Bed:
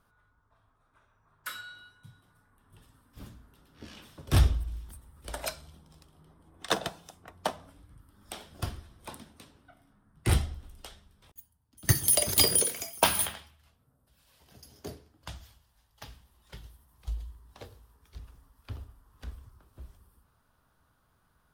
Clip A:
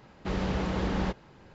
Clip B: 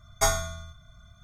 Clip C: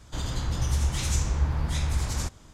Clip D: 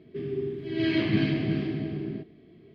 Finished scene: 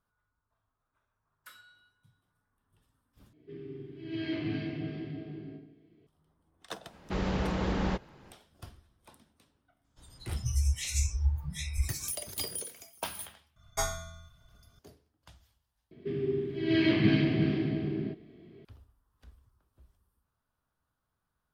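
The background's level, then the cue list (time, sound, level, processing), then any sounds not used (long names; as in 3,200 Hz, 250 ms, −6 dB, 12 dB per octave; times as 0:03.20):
bed −13.5 dB
0:03.33: overwrite with D −14.5 dB + feedback delay network reverb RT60 0.66 s, high-frequency decay 0.85×, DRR −2.5 dB
0:06.85: mix in A −1 dB, fades 0.10 s
0:09.84: mix in C −1.5 dB + noise reduction from a noise print of the clip's start 24 dB
0:13.56: mix in B −8 dB
0:15.91: overwrite with D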